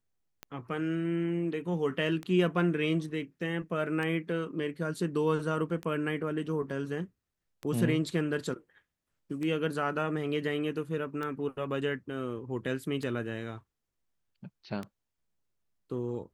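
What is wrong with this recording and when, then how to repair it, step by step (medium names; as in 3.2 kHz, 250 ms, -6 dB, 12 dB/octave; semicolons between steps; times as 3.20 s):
tick 33 1/3 rpm -23 dBFS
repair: de-click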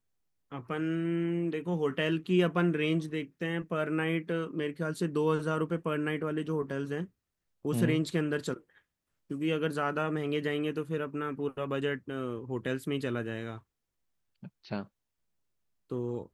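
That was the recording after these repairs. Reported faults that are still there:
nothing left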